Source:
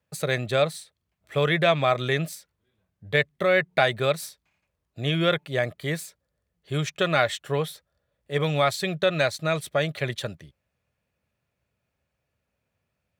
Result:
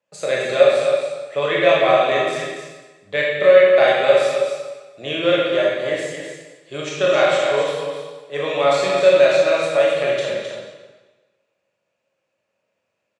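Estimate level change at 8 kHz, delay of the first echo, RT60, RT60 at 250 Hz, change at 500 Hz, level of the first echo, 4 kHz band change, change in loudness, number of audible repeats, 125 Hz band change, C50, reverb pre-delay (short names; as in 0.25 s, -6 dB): +3.0 dB, 0.262 s, 1.3 s, 1.2 s, +11.0 dB, -7.0 dB, +4.5 dB, +8.0 dB, 1, -8.0 dB, -2.0 dB, 19 ms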